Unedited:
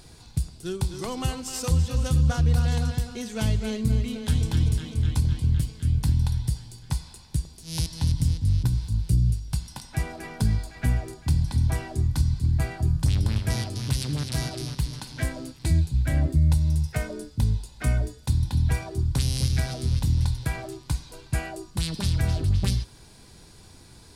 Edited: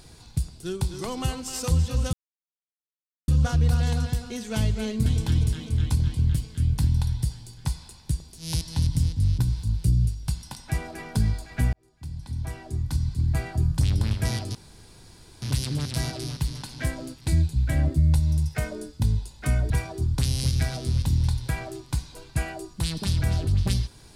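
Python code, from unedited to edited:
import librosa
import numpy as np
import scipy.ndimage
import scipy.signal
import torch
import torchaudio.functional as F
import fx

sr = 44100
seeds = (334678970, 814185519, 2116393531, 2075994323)

y = fx.edit(x, sr, fx.insert_silence(at_s=2.13, length_s=1.15),
    fx.cut(start_s=3.91, length_s=0.4),
    fx.fade_in_span(start_s=10.98, length_s=1.74),
    fx.insert_room_tone(at_s=13.8, length_s=0.87),
    fx.cut(start_s=18.08, length_s=0.59), tone=tone)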